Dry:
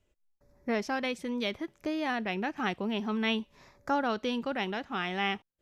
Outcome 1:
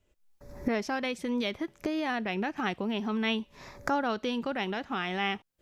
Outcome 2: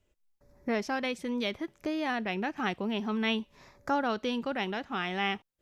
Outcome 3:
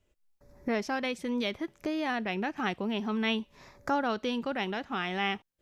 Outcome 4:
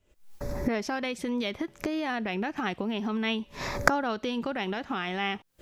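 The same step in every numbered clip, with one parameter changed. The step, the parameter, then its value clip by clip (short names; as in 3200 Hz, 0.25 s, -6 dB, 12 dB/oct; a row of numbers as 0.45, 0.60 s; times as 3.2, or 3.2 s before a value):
recorder AGC, rising by: 33, 5.1, 13, 89 dB/s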